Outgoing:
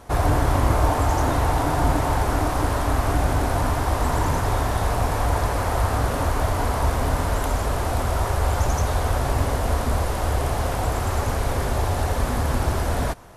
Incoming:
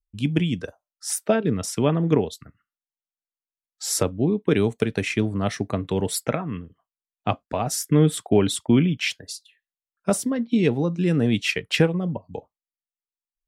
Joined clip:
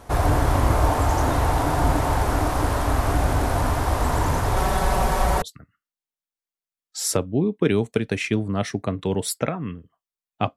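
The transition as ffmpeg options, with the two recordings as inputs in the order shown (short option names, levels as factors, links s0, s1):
-filter_complex "[0:a]asettb=1/sr,asplit=3[s0][s1][s2];[s0]atrim=end=4.564[s3];[s1]atrim=start=4.56:end=5.42,asetpts=PTS-STARTPTS,afade=t=in:d=0.004:c=qsin,afade=t=out:st=0.856:d=0.004:c=qsin,aecho=1:1:5.3:0.86,atrim=end_sample=37926[s4];[s2]atrim=start=5.416[s5];[s3][s4]acrossfade=d=0.004:c1=hsin:c2=qsin[s6];[s6][s5]acrossfade=d=0.004:c1=qsin:c2=hsin,apad=whole_dur=10.56,atrim=end=10.56,atrim=end=5.422[s7];[1:a]atrim=start=2.278:end=7.42[s8];[s7][s8]acrossfade=d=0.004:c1=hsin:c2=hsin"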